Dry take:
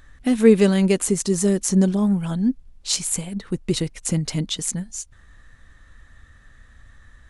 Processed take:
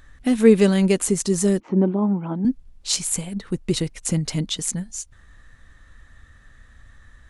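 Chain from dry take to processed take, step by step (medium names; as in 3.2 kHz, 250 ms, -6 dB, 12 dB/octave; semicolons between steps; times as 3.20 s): 1.60–2.45 s: cabinet simulation 190–2100 Hz, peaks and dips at 320 Hz +10 dB, 900 Hz +6 dB, 1.7 kHz -10 dB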